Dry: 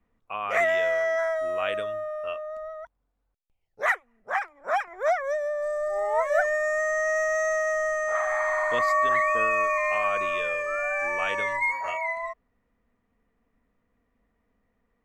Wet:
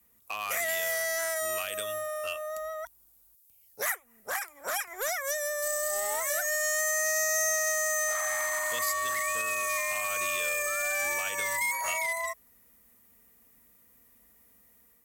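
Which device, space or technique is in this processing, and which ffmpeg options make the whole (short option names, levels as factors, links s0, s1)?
FM broadcast chain: -filter_complex "[0:a]highpass=48,dynaudnorm=f=100:g=5:m=1.58,acrossover=split=140|1600|7000[s0][s1][s2][s3];[s0]acompressor=threshold=0.00141:ratio=4[s4];[s1]acompressor=threshold=0.02:ratio=4[s5];[s2]acompressor=threshold=0.0126:ratio=4[s6];[s3]acompressor=threshold=0.00126:ratio=4[s7];[s4][s5][s6][s7]amix=inputs=4:normalize=0,aemphasis=mode=production:type=75fm,alimiter=limit=0.0708:level=0:latency=1:release=116,asoftclip=type=hard:threshold=0.0447,lowpass=f=15000:w=0.5412,lowpass=f=15000:w=1.3066,aemphasis=mode=production:type=75fm"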